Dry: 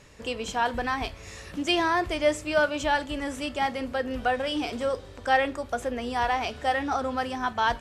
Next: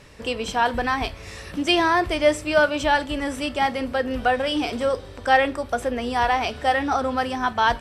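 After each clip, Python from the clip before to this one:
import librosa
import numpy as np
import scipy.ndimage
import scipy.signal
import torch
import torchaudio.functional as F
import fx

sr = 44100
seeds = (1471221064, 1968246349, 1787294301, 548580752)

y = fx.notch(x, sr, hz=6800.0, q=6.5)
y = y * librosa.db_to_amplitude(5.0)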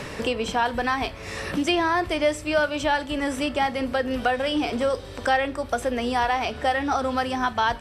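y = fx.band_squash(x, sr, depth_pct=70)
y = y * librosa.db_to_amplitude(-2.5)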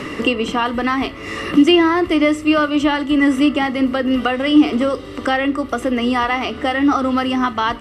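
y = fx.small_body(x, sr, hz=(300.0, 1200.0, 2000.0, 2800.0), ring_ms=25, db=15)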